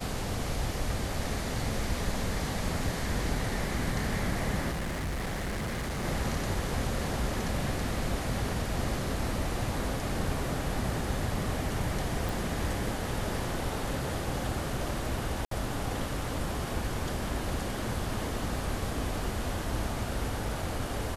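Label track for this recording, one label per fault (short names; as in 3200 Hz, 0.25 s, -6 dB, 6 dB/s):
4.710000	6.050000	clipped -30 dBFS
12.290000	12.290000	pop
15.450000	15.510000	gap 63 ms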